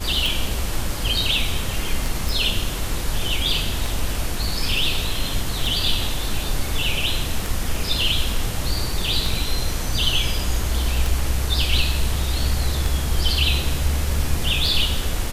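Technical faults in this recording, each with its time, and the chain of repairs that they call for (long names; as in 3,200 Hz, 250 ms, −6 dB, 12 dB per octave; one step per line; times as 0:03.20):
scratch tick 33 1/3 rpm
0:02.29: click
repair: click removal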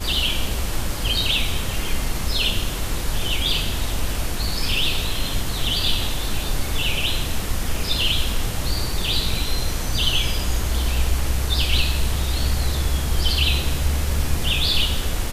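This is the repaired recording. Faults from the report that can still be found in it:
none of them is left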